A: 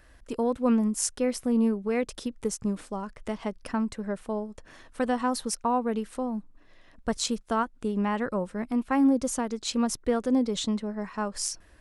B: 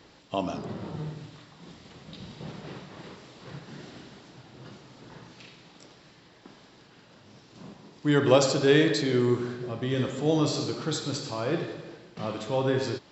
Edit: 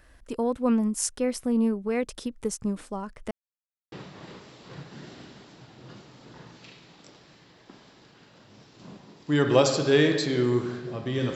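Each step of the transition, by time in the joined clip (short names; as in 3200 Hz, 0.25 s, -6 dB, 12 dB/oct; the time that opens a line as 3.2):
A
3.31–3.92 mute
3.92 switch to B from 2.68 s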